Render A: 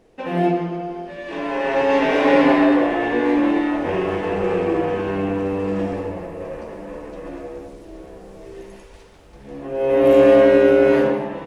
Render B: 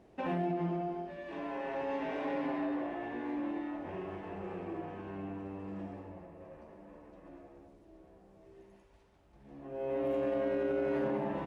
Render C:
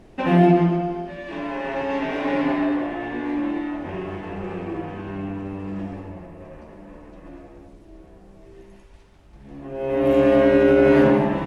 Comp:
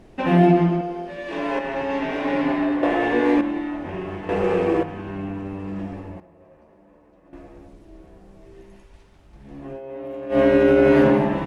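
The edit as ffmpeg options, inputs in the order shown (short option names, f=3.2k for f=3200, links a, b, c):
-filter_complex "[0:a]asplit=3[a][b][c];[1:a]asplit=2[d][e];[2:a]asplit=6[f][g][h][i][j][k];[f]atrim=end=0.812[l];[a]atrim=start=0.808:end=1.592[m];[g]atrim=start=1.588:end=2.832[n];[b]atrim=start=2.828:end=3.412[o];[h]atrim=start=3.408:end=4.292[p];[c]atrim=start=4.288:end=4.832[q];[i]atrim=start=4.828:end=6.202[r];[d]atrim=start=6.198:end=7.332[s];[j]atrim=start=7.328:end=9.81[t];[e]atrim=start=9.71:end=10.39[u];[k]atrim=start=10.29[v];[l][m]acrossfade=d=0.004:c1=hsin:c2=hsin[w];[w][n]acrossfade=d=0.004:c1=hsin:c2=hsin[x];[x][o]acrossfade=d=0.004:c1=hsin:c2=hsin[y];[y][p]acrossfade=d=0.004:c1=hsin:c2=hsin[z];[z][q]acrossfade=d=0.004:c1=hsin:c2=hsin[aa];[aa][r]acrossfade=d=0.004:c1=hsin:c2=hsin[ab];[ab][s]acrossfade=d=0.004:c1=hsin:c2=hsin[ac];[ac][t]acrossfade=d=0.004:c1=hsin:c2=hsin[ad];[ad][u]acrossfade=d=0.1:c1=tri:c2=tri[ae];[ae][v]acrossfade=d=0.1:c1=tri:c2=tri"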